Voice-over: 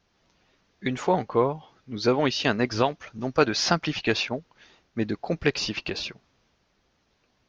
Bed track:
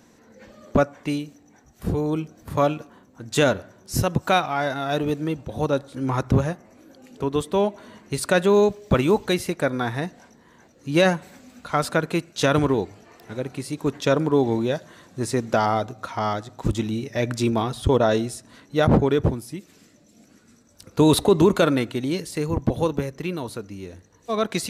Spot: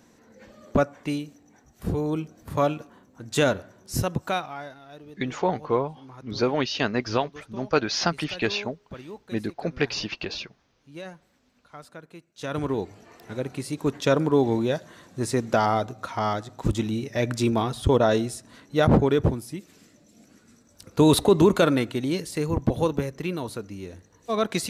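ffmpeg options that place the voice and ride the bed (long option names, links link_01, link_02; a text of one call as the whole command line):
ffmpeg -i stem1.wav -i stem2.wav -filter_complex "[0:a]adelay=4350,volume=-1.5dB[link_01];[1:a]volume=18dB,afade=type=out:start_time=3.9:duration=0.89:silence=0.112202,afade=type=in:start_time=12.34:duration=0.71:silence=0.0944061[link_02];[link_01][link_02]amix=inputs=2:normalize=0" out.wav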